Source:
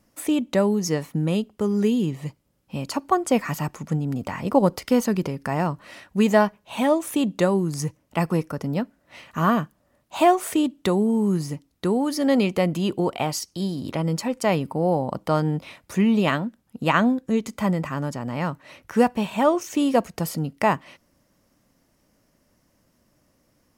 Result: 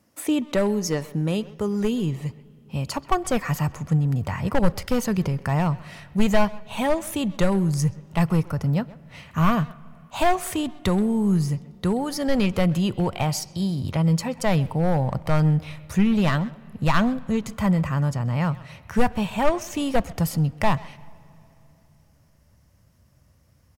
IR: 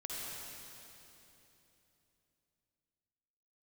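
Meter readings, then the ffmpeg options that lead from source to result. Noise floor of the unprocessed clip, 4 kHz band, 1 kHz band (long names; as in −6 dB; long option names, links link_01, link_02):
−67 dBFS, 0.0 dB, −2.0 dB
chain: -filter_complex "[0:a]highpass=frequency=63:width=0.5412,highpass=frequency=63:width=1.3066,volume=14dB,asoftclip=hard,volume=-14dB,asplit=2[link_01][link_02];[link_02]adelay=130,highpass=300,lowpass=3400,asoftclip=type=hard:threshold=-23.5dB,volume=-16dB[link_03];[link_01][link_03]amix=inputs=2:normalize=0,asplit=2[link_04][link_05];[1:a]atrim=start_sample=2205,lowpass=4100[link_06];[link_05][link_06]afir=irnorm=-1:irlink=0,volume=-23dB[link_07];[link_04][link_07]amix=inputs=2:normalize=0,asubboost=boost=12:cutoff=83"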